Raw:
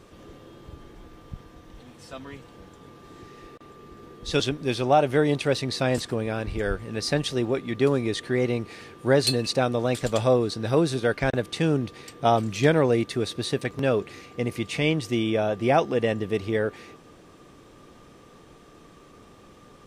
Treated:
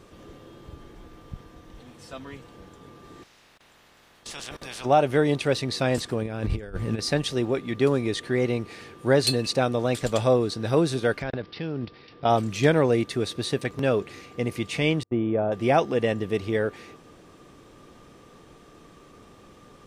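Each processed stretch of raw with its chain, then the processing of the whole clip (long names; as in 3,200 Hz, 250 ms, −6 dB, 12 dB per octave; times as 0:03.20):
0:03.22–0:04.84: ceiling on every frequency bin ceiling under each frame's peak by 25 dB + output level in coarse steps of 19 dB
0:06.22–0:06.99: compressor whose output falls as the input rises −32 dBFS, ratio −0.5 + low-shelf EQ 270 Hz +6.5 dB
0:11.22–0:12.30: output level in coarse steps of 10 dB + bad sample-rate conversion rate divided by 4×, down none, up filtered
0:15.03–0:15.52: low-pass filter 1,100 Hz + noise gate −33 dBFS, range −35 dB
whole clip: no processing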